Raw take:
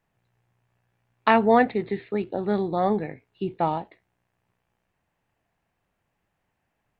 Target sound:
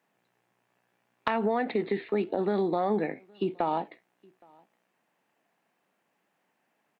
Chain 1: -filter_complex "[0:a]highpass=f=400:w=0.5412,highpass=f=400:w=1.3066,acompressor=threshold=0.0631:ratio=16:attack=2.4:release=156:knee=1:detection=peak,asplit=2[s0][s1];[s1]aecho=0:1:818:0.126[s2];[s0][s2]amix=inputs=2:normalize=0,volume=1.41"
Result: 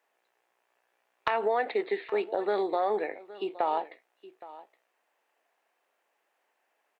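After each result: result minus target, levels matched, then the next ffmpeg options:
250 Hz band -8.0 dB; echo-to-direct +11 dB
-filter_complex "[0:a]highpass=f=200:w=0.5412,highpass=f=200:w=1.3066,acompressor=threshold=0.0631:ratio=16:attack=2.4:release=156:knee=1:detection=peak,asplit=2[s0][s1];[s1]aecho=0:1:818:0.126[s2];[s0][s2]amix=inputs=2:normalize=0,volume=1.41"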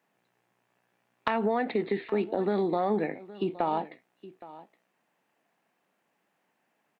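echo-to-direct +11 dB
-filter_complex "[0:a]highpass=f=200:w=0.5412,highpass=f=200:w=1.3066,acompressor=threshold=0.0631:ratio=16:attack=2.4:release=156:knee=1:detection=peak,asplit=2[s0][s1];[s1]aecho=0:1:818:0.0355[s2];[s0][s2]amix=inputs=2:normalize=0,volume=1.41"

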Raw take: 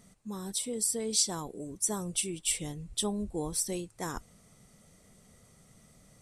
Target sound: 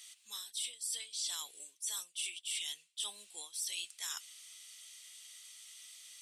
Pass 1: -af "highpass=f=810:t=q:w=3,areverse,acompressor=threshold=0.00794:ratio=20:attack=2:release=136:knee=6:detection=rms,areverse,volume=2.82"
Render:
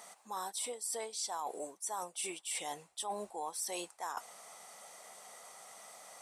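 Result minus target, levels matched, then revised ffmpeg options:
1 kHz band +18.5 dB
-af "highpass=f=3100:t=q:w=3,areverse,acompressor=threshold=0.00794:ratio=20:attack=2:release=136:knee=6:detection=rms,areverse,volume=2.82"

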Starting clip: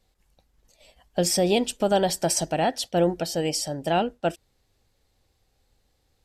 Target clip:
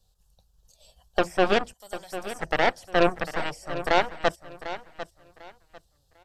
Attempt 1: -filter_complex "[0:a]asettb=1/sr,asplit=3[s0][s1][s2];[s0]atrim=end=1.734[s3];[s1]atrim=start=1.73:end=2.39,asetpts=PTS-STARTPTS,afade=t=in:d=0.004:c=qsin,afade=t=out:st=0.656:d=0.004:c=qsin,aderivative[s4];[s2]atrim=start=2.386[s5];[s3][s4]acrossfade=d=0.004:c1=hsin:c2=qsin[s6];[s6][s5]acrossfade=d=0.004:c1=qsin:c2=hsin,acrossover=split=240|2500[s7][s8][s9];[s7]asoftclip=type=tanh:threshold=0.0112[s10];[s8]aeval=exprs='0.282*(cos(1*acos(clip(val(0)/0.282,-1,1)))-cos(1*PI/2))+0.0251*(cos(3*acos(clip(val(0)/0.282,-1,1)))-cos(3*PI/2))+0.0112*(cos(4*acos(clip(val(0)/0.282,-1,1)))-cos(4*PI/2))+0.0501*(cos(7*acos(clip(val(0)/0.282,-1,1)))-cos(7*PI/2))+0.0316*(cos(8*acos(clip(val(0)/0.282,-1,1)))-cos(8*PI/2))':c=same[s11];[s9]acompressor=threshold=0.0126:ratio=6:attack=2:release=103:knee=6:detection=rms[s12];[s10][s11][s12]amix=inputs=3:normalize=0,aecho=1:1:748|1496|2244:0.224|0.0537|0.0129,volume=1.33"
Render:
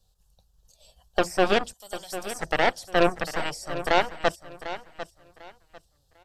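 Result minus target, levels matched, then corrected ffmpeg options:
compression: peak gain reduction -7 dB
-filter_complex "[0:a]asettb=1/sr,asplit=3[s0][s1][s2];[s0]atrim=end=1.734[s3];[s1]atrim=start=1.73:end=2.39,asetpts=PTS-STARTPTS,afade=t=in:d=0.004:c=qsin,afade=t=out:st=0.656:d=0.004:c=qsin,aderivative[s4];[s2]atrim=start=2.386[s5];[s3][s4]acrossfade=d=0.004:c1=hsin:c2=qsin[s6];[s6][s5]acrossfade=d=0.004:c1=qsin:c2=hsin,acrossover=split=240|2500[s7][s8][s9];[s7]asoftclip=type=tanh:threshold=0.0112[s10];[s8]aeval=exprs='0.282*(cos(1*acos(clip(val(0)/0.282,-1,1)))-cos(1*PI/2))+0.0251*(cos(3*acos(clip(val(0)/0.282,-1,1)))-cos(3*PI/2))+0.0112*(cos(4*acos(clip(val(0)/0.282,-1,1)))-cos(4*PI/2))+0.0501*(cos(7*acos(clip(val(0)/0.282,-1,1)))-cos(7*PI/2))+0.0316*(cos(8*acos(clip(val(0)/0.282,-1,1)))-cos(8*PI/2))':c=same[s11];[s9]acompressor=threshold=0.00473:ratio=6:attack=2:release=103:knee=6:detection=rms[s12];[s10][s11][s12]amix=inputs=3:normalize=0,aecho=1:1:748|1496|2244:0.224|0.0537|0.0129,volume=1.33"

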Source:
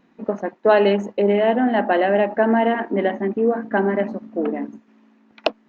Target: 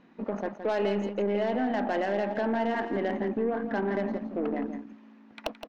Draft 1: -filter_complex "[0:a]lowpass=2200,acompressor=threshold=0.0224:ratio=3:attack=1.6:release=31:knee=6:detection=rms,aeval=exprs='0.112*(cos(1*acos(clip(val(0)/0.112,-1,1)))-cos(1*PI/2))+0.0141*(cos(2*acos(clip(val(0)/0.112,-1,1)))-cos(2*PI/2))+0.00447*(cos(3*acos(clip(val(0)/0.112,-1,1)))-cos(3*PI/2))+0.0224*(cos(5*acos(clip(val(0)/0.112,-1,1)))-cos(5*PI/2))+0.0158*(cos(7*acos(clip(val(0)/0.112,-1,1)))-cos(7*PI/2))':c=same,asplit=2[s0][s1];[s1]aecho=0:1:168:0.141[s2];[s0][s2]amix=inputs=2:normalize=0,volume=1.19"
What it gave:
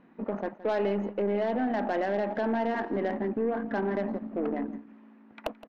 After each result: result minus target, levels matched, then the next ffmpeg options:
echo-to-direct -7.5 dB; 4 kHz band -4.0 dB
-filter_complex "[0:a]lowpass=2200,acompressor=threshold=0.0224:ratio=3:attack=1.6:release=31:knee=6:detection=rms,aeval=exprs='0.112*(cos(1*acos(clip(val(0)/0.112,-1,1)))-cos(1*PI/2))+0.0141*(cos(2*acos(clip(val(0)/0.112,-1,1)))-cos(2*PI/2))+0.00447*(cos(3*acos(clip(val(0)/0.112,-1,1)))-cos(3*PI/2))+0.0224*(cos(5*acos(clip(val(0)/0.112,-1,1)))-cos(5*PI/2))+0.0158*(cos(7*acos(clip(val(0)/0.112,-1,1)))-cos(7*PI/2))':c=same,asplit=2[s0][s1];[s1]aecho=0:1:168:0.335[s2];[s0][s2]amix=inputs=2:normalize=0,volume=1.19"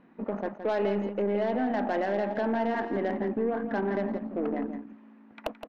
4 kHz band -4.0 dB
-filter_complex "[0:a]lowpass=5200,acompressor=threshold=0.0224:ratio=3:attack=1.6:release=31:knee=6:detection=rms,aeval=exprs='0.112*(cos(1*acos(clip(val(0)/0.112,-1,1)))-cos(1*PI/2))+0.0141*(cos(2*acos(clip(val(0)/0.112,-1,1)))-cos(2*PI/2))+0.00447*(cos(3*acos(clip(val(0)/0.112,-1,1)))-cos(3*PI/2))+0.0224*(cos(5*acos(clip(val(0)/0.112,-1,1)))-cos(5*PI/2))+0.0158*(cos(7*acos(clip(val(0)/0.112,-1,1)))-cos(7*PI/2))':c=same,asplit=2[s0][s1];[s1]aecho=0:1:168:0.335[s2];[s0][s2]amix=inputs=2:normalize=0,volume=1.19"

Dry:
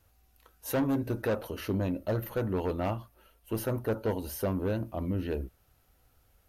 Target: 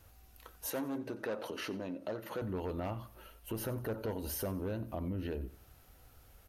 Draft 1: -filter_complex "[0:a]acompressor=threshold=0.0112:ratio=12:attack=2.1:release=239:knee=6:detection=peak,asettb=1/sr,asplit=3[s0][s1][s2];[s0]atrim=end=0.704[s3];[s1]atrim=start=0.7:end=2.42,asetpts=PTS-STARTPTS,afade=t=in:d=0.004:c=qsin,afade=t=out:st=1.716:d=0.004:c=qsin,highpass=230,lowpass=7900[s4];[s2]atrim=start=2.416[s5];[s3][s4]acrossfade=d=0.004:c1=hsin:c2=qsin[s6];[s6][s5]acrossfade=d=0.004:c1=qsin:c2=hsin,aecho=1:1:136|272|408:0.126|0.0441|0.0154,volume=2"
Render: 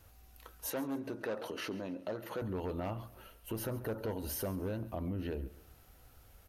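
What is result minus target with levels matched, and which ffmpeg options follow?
echo 45 ms late
-filter_complex "[0:a]acompressor=threshold=0.0112:ratio=12:attack=2.1:release=239:knee=6:detection=peak,asettb=1/sr,asplit=3[s0][s1][s2];[s0]atrim=end=0.704[s3];[s1]atrim=start=0.7:end=2.42,asetpts=PTS-STARTPTS,afade=t=in:d=0.004:c=qsin,afade=t=out:st=1.716:d=0.004:c=qsin,highpass=230,lowpass=7900[s4];[s2]atrim=start=2.416[s5];[s3][s4]acrossfade=d=0.004:c1=hsin:c2=qsin[s6];[s6][s5]acrossfade=d=0.004:c1=qsin:c2=hsin,aecho=1:1:91|182|273:0.126|0.0441|0.0154,volume=2"

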